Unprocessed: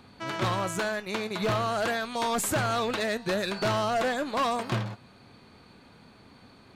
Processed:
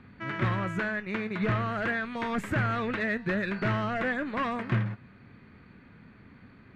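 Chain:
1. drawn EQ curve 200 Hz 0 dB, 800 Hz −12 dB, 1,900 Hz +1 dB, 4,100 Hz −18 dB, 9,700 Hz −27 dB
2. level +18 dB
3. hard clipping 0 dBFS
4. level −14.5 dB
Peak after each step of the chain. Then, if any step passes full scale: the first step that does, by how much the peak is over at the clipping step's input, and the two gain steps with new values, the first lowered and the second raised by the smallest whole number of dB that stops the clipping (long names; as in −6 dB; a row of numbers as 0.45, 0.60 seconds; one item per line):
−21.0, −3.0, −3.0, −17.5 dBFS
no step passes full scale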